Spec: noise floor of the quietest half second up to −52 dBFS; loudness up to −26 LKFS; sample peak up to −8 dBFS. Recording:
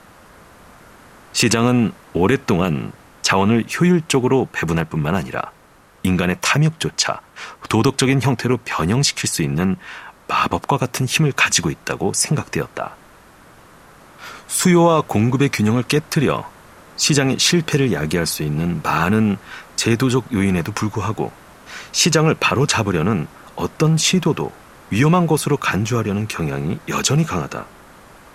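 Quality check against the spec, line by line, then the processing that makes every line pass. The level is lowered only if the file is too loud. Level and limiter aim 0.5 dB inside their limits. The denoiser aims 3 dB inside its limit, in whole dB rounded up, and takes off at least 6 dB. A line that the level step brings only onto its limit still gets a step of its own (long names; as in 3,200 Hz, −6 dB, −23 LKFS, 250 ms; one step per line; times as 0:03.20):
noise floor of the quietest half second −49 dBFS: out of spec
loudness −18.5 LKFS: out of spec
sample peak −3.0 dBFS: out of spec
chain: level −8 dB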